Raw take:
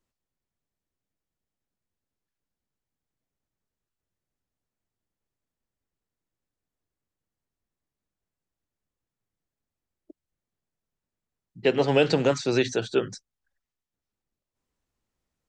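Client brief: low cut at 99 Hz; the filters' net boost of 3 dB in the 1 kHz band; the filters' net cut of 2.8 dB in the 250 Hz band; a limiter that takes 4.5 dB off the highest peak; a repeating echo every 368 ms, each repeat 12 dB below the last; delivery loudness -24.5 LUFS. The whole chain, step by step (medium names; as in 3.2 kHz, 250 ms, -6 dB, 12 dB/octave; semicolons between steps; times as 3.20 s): high-pass 99 Hz; peaking EQ 250 Hz -4 dB; peaking EQ 1 kHz +4.5 dB; peak limiter -13 dBFS; feedback delay 368 ms, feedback 25%, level -12 dB; trim +2 dB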